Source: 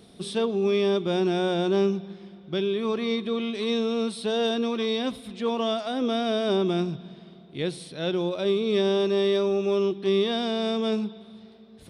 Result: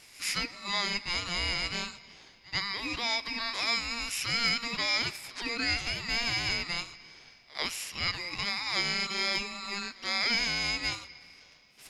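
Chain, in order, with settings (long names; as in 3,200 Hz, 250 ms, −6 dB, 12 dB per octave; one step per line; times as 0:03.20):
high-pass filter 1,200 Hz 24 dB per octave
ring modulation 1,400 Hz
echo ahead of the sound 89 ms −21.5 dB
level +8.5 dB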